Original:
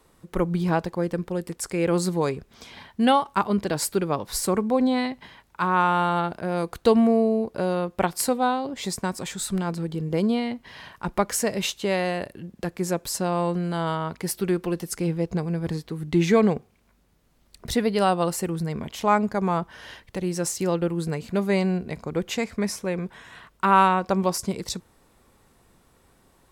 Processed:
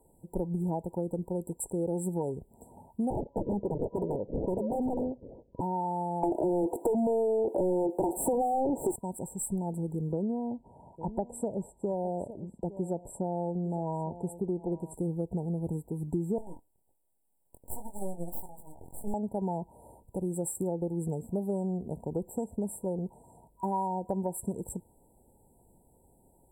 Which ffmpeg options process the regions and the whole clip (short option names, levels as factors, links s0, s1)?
-filter_complex "[0:a]asettb=1/sr,asplit=3[s0][s1][s2];[s0]atrim=end=3.104[s3];[s1]atrim=start=3.1:end=5.61,asetpts=PTS-STARTPTS,afade=t=in:d=0.004:c=qsin,afade=t=out:st=2.506:d=0.004:c=qsin,acrusher=samples=40:mix=1:aa=0.000001:lfo=1:lforange=40:lforate=3.4,lowpass=f=500:t=q:w=2.7,aeval=exprs='0.15*(abs(mod(val(0)/0.15+3,4)-2)-1)':c=same[s4];[s2]atrim=start=5.606[s5];[s3][s4]acrossfade=d=0.004:c1=hsin:c2=qsin[s6];[s6][s5]acrossfade=d=0.004:c1=qsin:c2=hsin,asettb=1/sr,asplit=3[s7][s8][s9];[s7]atrim=end=6.234[s10];[s8]atrim=start=6.23:end=8.96,asetpts=PTS-STARTPTS,afade=t=in:d=0.004:c=qsin,afade=t=out:st=2.726:d=0.004:c=qsin,highpass=f=330:t=q:w=3.2,asplit=2[s11][s12];[s12]highpass=f=720:p=1,volume=79.4,asoftclip=type=tanh:threshold=0.75[s13];[s11][s13]amix=inputs=2:normalize=0,lowpass=f=2200:p=1,volume=0.501[s14];[s9]atrim=start=8.956[s15];[s10][s14]acrossfade=d=0.004:c1=hsin:c2=qsin[s16];[s16][s15]acrossfade=d=0.004:c1=qsin:c2=hsin,asettb=1/sr,asplit=3[s17][s18][s19];[s17]atrim=end=10.124[s20];[s18]atrim=start=10.12:end=14.94,asetpts=PTS-STARTPTS,afade=t=in:d=0.004:c=qsin,afade=t=out:st=4.816:d=0.004:c=qsin,lowpass=4700,aecho=1:1:856:0.126,atrim=end_sample=212562[s21];[s19]atrim=start=14.936[s22];[s20][s21]acrossfade=d=0.004:c1=hsin:c2=qsin[s23];[s23][s22]acrossfade=d=0.004:c1=qsin:c2=hsin,asettb=1/sr,asplit=3[s24][s25][s26];[s24]atrim=end=16.384[s27];[s25]atrim=start=16.38:end=19.14,asetpts=PTS-STARTPTS,afade=t=in:d=0.004:c=qsin,afade=t=out:st=2.756:d=0.004:c=qsin,highpass=860,aeval=exprs='abs(val(0))':c=same,asplit=2[s28][s29];[s29]adelay=23,volume=0.398[s30];[s28][s30]amix=inputs=2:normalize=0,atrim=end_sample=121716[s31];[s26]atrim=start=19.136[s32];[s27][s31]acrossfade=d=0.004:c1=hsin:c2=qsin[s33];[s33][s32]acrossfade=d=0.004:c1=qsin:c2=hsin,afftfilt=real='re*(1-between(b*sr/4096,970,7400))':imag='im*(1-between(b*sr/4096,970,7400))':win_size=4096:overlap=0.75,acompressor=threshold=0.0562:ratio=5,volume=0.708"